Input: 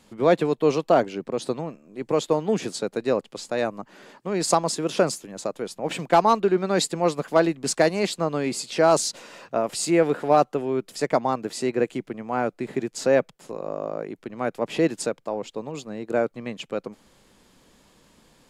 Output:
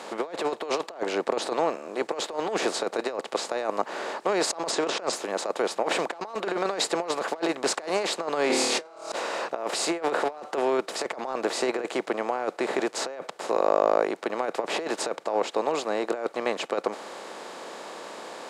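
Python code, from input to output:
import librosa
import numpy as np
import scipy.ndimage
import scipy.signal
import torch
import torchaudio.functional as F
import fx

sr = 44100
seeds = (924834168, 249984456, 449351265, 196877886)

y = fx.bin_compress(x, sr, power=0.6)
y = scipy.signal.sosfilt(scipy.signal.butter(2, 450.0, 'highpass', fs=sr, output='sos'), y)
y = fx.high_shelf(y, sr, hz=5700.0, db=-11.0)
y = fx.room_flutter(y, sr, wall_m=4.6, rt60_s=1.1, at=(8.47, 9.12))
y = fx.over_compress(y, sr, threshold_db=-24.0, ratio=-0.5)
y = fx.lowpass(y, sr, hz=8400.0, slope=24, at=(4.71, 5.13))
y = y * librosa.db_to_amplitude(-2.0)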